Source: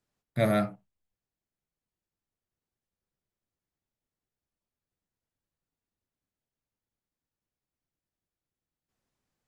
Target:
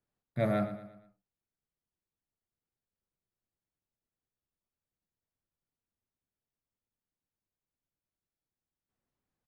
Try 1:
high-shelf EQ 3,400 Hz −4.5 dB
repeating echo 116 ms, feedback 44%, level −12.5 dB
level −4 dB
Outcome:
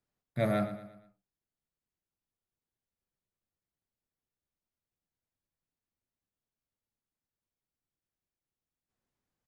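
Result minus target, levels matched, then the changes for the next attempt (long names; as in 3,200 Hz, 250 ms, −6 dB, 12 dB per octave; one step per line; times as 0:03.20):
8,000 Hz band +6.0 dB
change: high-shelf EQ 3,400 Hz −11.5 dB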